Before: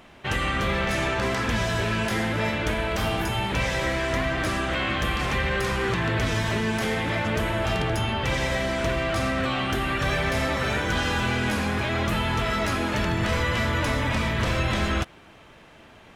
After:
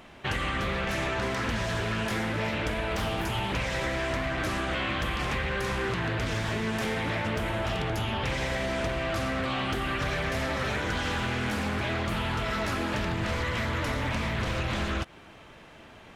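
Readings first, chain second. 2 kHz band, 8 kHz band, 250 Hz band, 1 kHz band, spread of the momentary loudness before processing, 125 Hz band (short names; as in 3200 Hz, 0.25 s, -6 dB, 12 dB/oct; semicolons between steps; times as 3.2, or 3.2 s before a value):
-4.5 dB, -5.5 dB, -4.5 dB, -4.0 dB, 1 LU, -4.5 dB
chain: compressor, threshold -26 dBFS, peak gain reduction 6.5 dB; Doppler distortion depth 0.27 ms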